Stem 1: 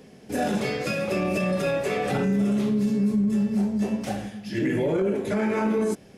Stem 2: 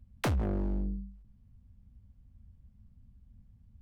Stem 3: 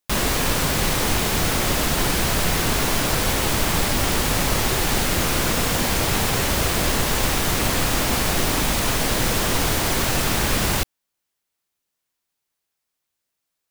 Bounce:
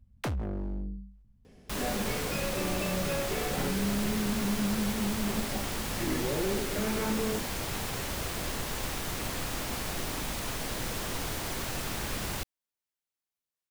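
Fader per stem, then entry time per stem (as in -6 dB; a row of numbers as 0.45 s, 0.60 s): -8.5 dB, -3.0 dB, -13.5 dB; 1.45 s, 0.00 s, 1.60 s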